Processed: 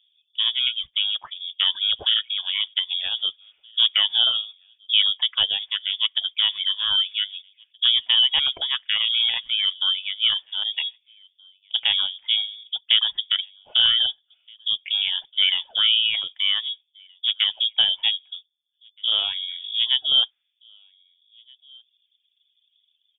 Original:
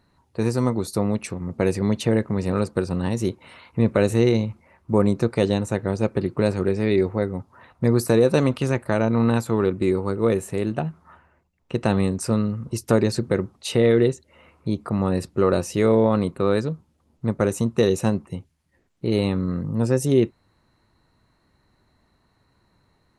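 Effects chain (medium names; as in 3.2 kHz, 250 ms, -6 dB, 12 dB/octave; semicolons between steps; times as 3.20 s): level-controlled noise filter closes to 440 Hz, open at -15 dBFS; reverb removal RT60 1.6 s; echo from a far wall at 270 m, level -29 dB; frequency inversion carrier 3.5 kHz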